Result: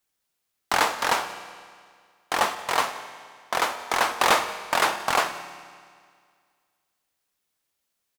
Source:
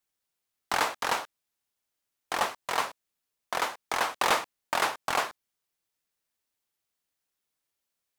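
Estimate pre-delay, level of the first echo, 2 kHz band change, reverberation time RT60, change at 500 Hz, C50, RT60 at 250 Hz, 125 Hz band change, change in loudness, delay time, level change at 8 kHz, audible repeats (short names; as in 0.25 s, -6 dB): 11 ms, -21.5 dB, +5.5 dB, 2.0 s, +5.5 dB, 11.0 dB, 2.0 s, +5.5 dB, +5.5 dB, 0.178 s, +5.5 dB, 1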